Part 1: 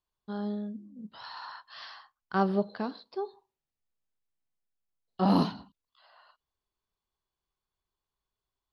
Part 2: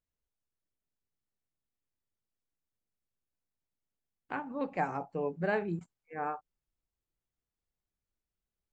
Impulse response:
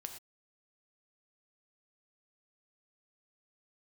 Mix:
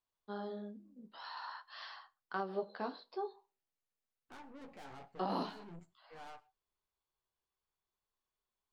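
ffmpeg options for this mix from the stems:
-filter_complex "[0:a]highpass=350,highshelf=f=4900:g=-6.5,volume=1.06,asplit=3[s0][s1][s2];[s1]volume=0.158[s3];[1:a]aeval=exprs='(tanh(158*val(0)+0.5)-tanh(0.5))/158':c=same,volume=0.596,asplit=2[s4][s5];[s5]volume=0.422[s6];[s2]apad=whole_len=384576[s7];[s4][s7]sidechaincompress=threshold=0.0141:ratio=8:attack=16:release=245[s8];[2:a]atrim=start_sample=2205[s9];[s3][s6]amix=inputs=2:normalize=0[s10];[s10][s9]afir=irnorm=-1:irlink=0[s11];[s0][s8][s11]amix=inputs=3:normalize=0,flanger=delay=8:depth=8.7:regen=-34:speed=0.48:shape=sinusoidal,alimiter=level_in=1.26:limit=0.0631:level=0:latency=1:release=292,volume=0.794"

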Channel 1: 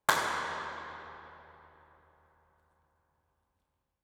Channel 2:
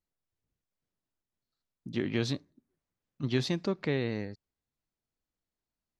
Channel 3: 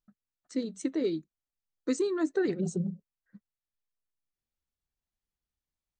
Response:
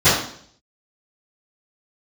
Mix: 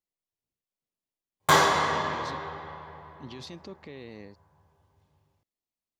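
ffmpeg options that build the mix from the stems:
-filter_complex "[0:a]adelay=1400,volume=1.06,asplit=2[s0][s1];[s1]volume=0.178[s2];[1:a]lowshelf=f=150:g=-11,volume=0.668,alimiter=level_in=2.66:limit=0.0631:level=0:latency=1:release=46,volume=0.376,volume=1[s3];[3:a]atrim=start_sample=2205[s4];[s2][s4]afir=irnorm=-1:irlink=0[s5];[s0][s3][s5]amix=inputs=3:normalize=0,equalizer=f=1500:w=4.5:g=-10"

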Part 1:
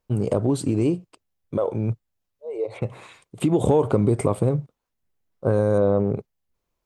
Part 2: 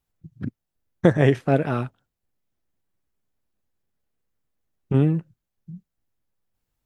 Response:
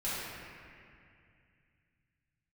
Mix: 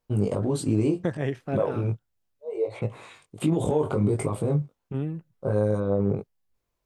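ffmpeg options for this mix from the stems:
-filter_complex "[0:a]alimiter=limit=0.211:level=0:latency=1:release=22,flanger=delay=18.5:depth=2.2:speed=1.4,volume=1.19[s0];[1:a]volume=0.282[s1];[s0][s1]amix=inputs=2:normalize=0"

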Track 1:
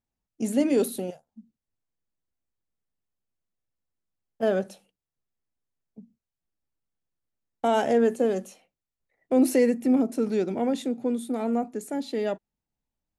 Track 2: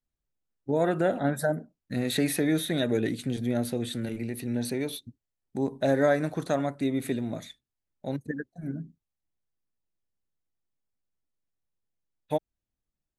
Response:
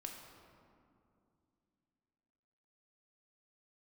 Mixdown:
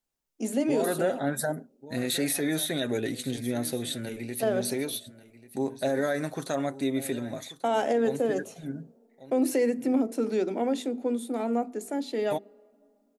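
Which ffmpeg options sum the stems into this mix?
-filter_complex "[0:a]highpass=f=220:w=0.5412,highpass=f=220:w=1.3066,bandreject=f=50:t=h:w=6,bandreject=f=100:t=h:w=6,bandreject=f=150:t=h:w=6,bandreject=f=200:t=h:w=6,bandreject=f=250:t=h:w=6,bandreject=f=300:t=h:w=6,bandreject=f=350:t=h:w=6,bandreject=f=400:t=h:w=6,bandreject=f=450:t=h:w=6,volume=0.944,asplit=2[s0][s1];[s1]volume=0.106[s2];[1:a]bass=f=250:g=-7,treble=f=4000:g=6,aecho=1:1:7.5:0.37,alimiter=limit=0.119:level=0:latency=1:release=28,volume=1,asplit=2[s3][s4];[s4]volume=0.141[s5];[2:a]atrim=start_sample=2205[s6];[s2][s6]afir=irnorm=-1:irlink=0[s7];[s5]aecho=0:1:1139:1[s8];[s0][s3][s7][s8]amix=inputs=4:normalize=0,alimiter=limit=0.15:level=0:latency=1:release=155"

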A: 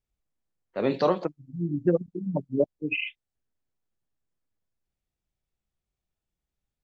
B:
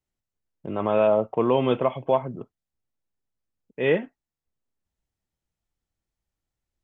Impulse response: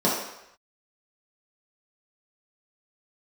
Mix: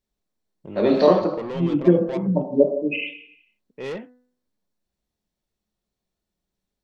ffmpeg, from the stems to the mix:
-filter_complex "[0:a]equalizer=f=4400:t=o:w=0.37:g=9.5,volume=0.944,asplit=2[s0][s1];[s1]volume=0.188[s2];[1:a]asoftclip=type=tanh:threshold=0.0708,equalizer=f=1500:t=o:w=0.77:g=-3.5,volume=0.668[s3];[2:a]atrim=start_sample=2205[s4];[s2][s4]afir=irnorm=-1:irlink=0[s5];[s0][s3][s5]amix=inputs=3:normalize=0,bandreject=f=248.8:t=h:w=4,bandreject=f=497.6:t=h:w=4,bandreject=f=746.4:t=h:w=4,bandreject=f=995.2:t=h:w=4,bandreject=f=1244:t=h:w=4,bandreject=f=1492.8:t=h:w=4,bandreject=f=1741.6:t=h:w=4,bandreject=f=1990.4:t=h:w=4"

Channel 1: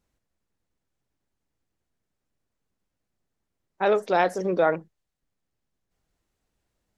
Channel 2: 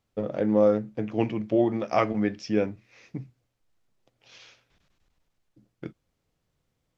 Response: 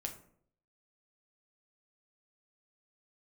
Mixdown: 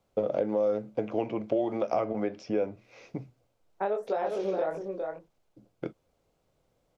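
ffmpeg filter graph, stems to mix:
-filter_complex "[0:a]acompressor=threshold=0.0501:ratio=6,flanger=delay=19:depth=7.4:speed=1.2,volume=0.708,asplit=2[s0][s1];[s1]volume=0.422[s2];[1:a]alimiter=limit=0.178:level=0:latency=1:release=113,bandreject=f=1800:w=7.1,volume=1[s3];[s2]aecho=0:1:407:1[s4];[s0][s3][s4]amix=inputs=3:normalize=0,equalizer=f=580:w=0.91:g=10,acrossover=split=410|1900[s5][s6][s7];[s5]acompressor=threshold=0.0178:ratio=4[s8];[s6]acompressor=threshold=0.0398:ratio=4[s9];[s7]acompressor=threshold=0.00251:ratio=4[s10];[s8][s9][s10]amix=inputs=3:normalize=0"

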